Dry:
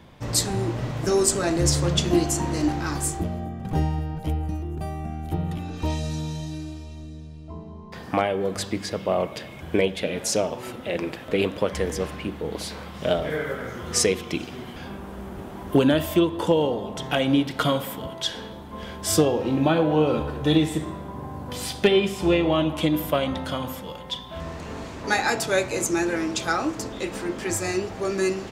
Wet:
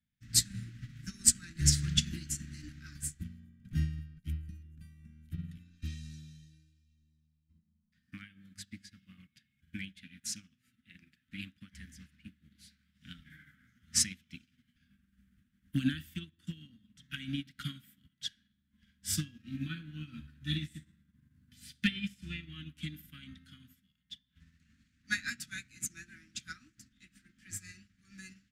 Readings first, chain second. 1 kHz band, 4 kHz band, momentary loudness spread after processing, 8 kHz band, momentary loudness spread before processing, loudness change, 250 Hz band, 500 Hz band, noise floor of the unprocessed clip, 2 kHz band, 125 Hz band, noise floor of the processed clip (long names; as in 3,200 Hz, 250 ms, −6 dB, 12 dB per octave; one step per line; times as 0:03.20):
−32.5 dB, −9.0 dB, 24 LU, −5.0 dB, 15 LU, −10.5 dB, −17.0 dB, below −40 dB, −39 dBFS, −12.5 dB, −11.5 dB, −78 dBFS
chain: elliptic band-stop filter 240–1,600 Hz, stop band 40 dB
expander for the loud parts 2.5 to 1, over −42 dBFS